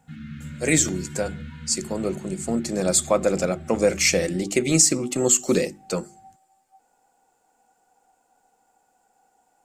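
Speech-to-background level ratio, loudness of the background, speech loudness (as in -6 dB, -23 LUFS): 17.0 dB, -39.0 LUFS, -22.0 LUFS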